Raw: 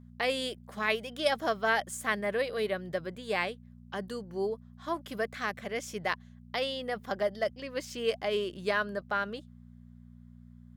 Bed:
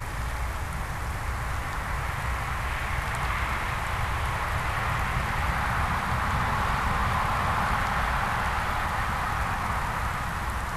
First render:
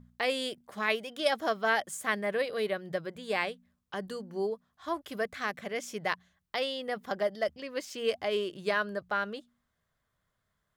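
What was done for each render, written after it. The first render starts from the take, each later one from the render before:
hum removal 60 Hz, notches 4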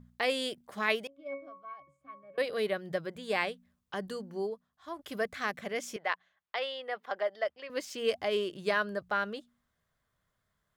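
0:01.07–0:02.38: resonances in every octave C#, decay 0.34 s
0:04.25–0:04.99: fade out quadratic, to −8 dB
0:05.96–0:07.70: three-way crossover with the lows and the highs turned down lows −22 dB, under 440 Hz, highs −15 dB, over 3,800 Hz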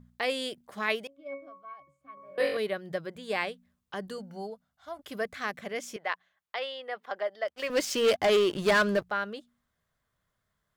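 0:02.15–0:02.57: flutter between parallel walls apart 3.7 metres, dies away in 0.61 s
0:04.18–0:04.99: comb filter 1.4 ms
0:07.48–0:09.04: leveller curve on the samples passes 3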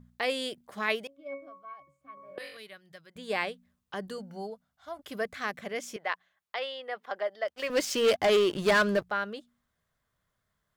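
0:02.38–0:03.16: guitar amp tone stack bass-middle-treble 5-5-5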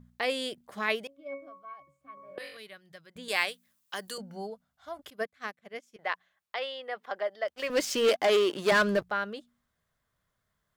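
0:03.28–0:04.18: spectral tilt +4 dB per octave
0:05.10–0:05.99: expander for the loud parts 2.5 to 1, over −47 dBFS
0:08.09–0:08.72: high-pass filter 260 Hz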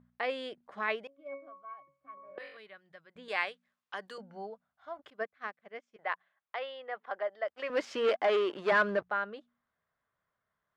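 low-pass filter 1,400 Hz 12 dB per octave
spectral tilt +3.5 dB per octave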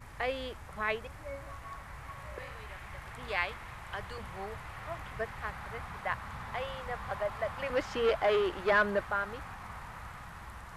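mix in bed −16.5 dB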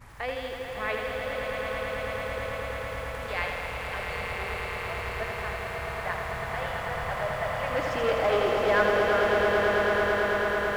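echo that builds up and dies away 110 ms, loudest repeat 8, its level −7.5 dB
feedback echo at a low word length 81 ms, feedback 80%, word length 9 bits, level −6 dB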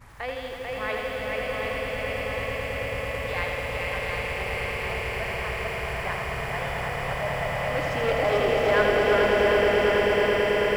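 feedback echo with a long and a short gap by turns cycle 734 ms, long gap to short 1.5 to 1, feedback 63%, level −3.5 dB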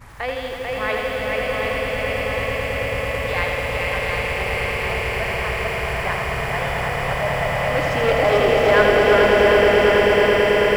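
level +6.5 dB

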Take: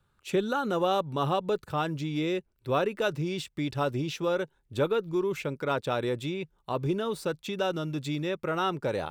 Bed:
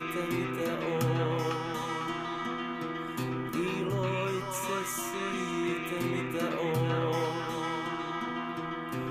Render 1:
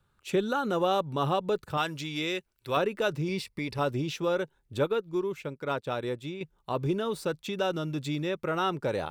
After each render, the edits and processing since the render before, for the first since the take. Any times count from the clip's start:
0:01.77–0:02.77: tilt shelving filter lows −6.5 dB, about 880 Hz
0:03.28–0:03.79: EQ curve with evenly spaced ripples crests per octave 0.89, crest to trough 9 dB
0:04.78–0:06.41: expander for the loud parts, over −45 dBFS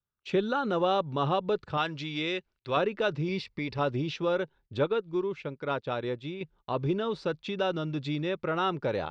low-pass filter 4,900 Hz 24 dB per octave
noise gate −57 dBFS, range −22 dB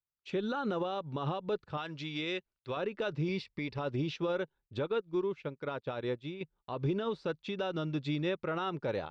brickwall limiter −24 dBFS, peak gain reduction 10 dB
expander for the loud parts 1.5 to 1, over −51 dBFS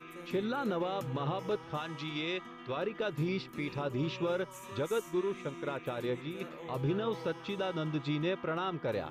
mix in bed −14 dB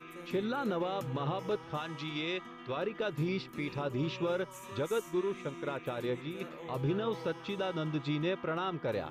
no processing that can be heard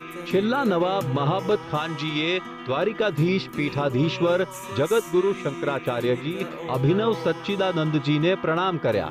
level +11.5 dB

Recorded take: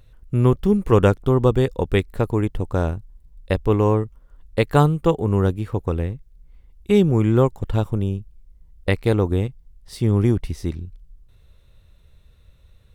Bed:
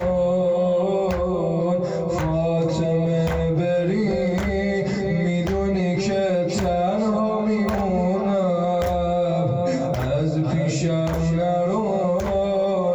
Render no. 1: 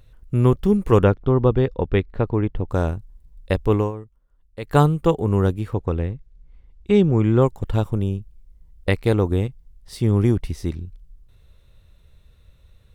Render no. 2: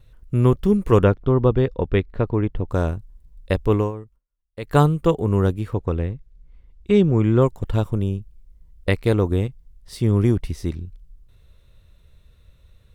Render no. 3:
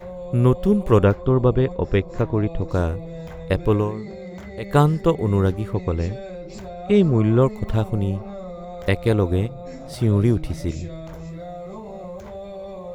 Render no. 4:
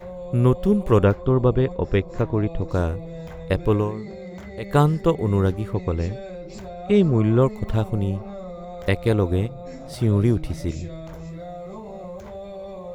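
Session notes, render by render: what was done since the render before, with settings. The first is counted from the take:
0:01.03–0:02.69: high-frequency loss of the air 230 metres; 0:03.77–0:04.76: duck −14 dB, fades 0.15 s; 0:05.74–0:07.42: high-frequency loss of the air 79 metres
notch filter 810 Hz, Q 12; noise gate with hold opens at −47 dBFS
mix in bed −14 dB
level −1 dB; brickwall limiter −3 dBFS, peak gain reduction 1 dB

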